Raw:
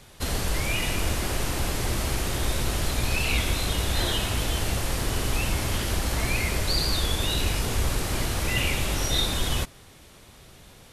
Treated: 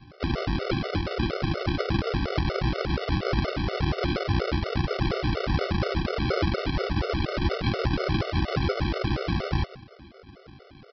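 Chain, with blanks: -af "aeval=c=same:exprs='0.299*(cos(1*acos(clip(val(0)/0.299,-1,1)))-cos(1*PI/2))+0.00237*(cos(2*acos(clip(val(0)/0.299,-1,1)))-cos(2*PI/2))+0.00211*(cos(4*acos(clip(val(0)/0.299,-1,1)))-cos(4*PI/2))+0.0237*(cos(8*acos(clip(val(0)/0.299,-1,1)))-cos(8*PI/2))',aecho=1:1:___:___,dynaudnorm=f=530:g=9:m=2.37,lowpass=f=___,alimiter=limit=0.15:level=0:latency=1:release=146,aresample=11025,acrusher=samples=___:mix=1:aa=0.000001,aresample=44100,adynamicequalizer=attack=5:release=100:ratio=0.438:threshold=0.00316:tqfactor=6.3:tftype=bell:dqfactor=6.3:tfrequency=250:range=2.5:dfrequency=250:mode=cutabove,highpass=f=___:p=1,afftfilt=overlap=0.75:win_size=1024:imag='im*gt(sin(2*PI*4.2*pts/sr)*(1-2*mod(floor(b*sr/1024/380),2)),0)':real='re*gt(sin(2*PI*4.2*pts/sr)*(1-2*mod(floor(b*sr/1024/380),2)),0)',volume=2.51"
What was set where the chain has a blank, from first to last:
112, 0.178, 2600, 12, 110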